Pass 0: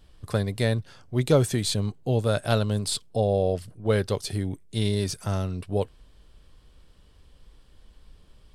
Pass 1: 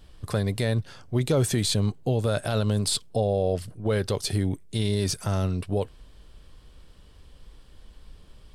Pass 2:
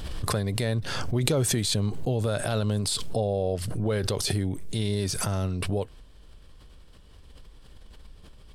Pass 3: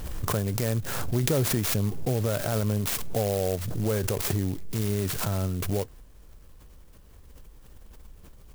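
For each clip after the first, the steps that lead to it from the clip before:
peak limiter -18.5 dBFS, peak gain reduction 11 dB; trim +4 dB
swell ahead of each attack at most 29 dB/s; trim -2.5 dB
sampling jitter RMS 0.085 ms

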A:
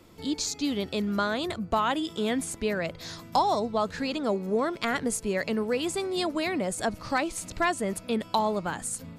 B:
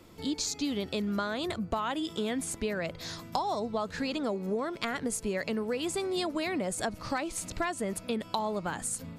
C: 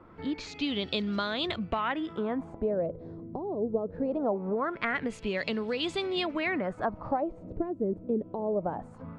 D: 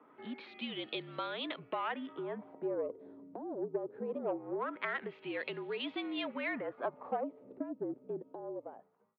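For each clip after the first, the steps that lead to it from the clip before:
compression 5:1, threshold -28 dBFS, peak gain reduction 9 dB
LFO low-pass sine 0.22 Hz 380–3800 Hz
fade out at the end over 1.34 s; Chebyshev shaper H 6 -27 dB, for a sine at -13.5 dBFS; mistuned SSB -55 Hz 320–3600 Hz; trim -6 dB

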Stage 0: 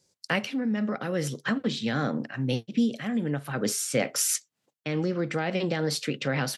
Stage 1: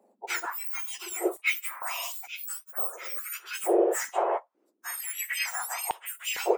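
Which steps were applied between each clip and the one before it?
spectrum inverted on a logarithmic axis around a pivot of 2 kHz; step-sequenced high-pass 2.2 Hz 230–3000 Hz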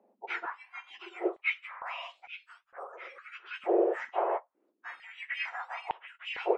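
low-pass 3 kHz 24 dB/octave; trim -3 dB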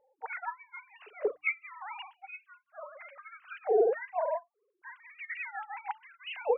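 formants replaced by sine waves; hum notches 60/120/180/240/300 Hz

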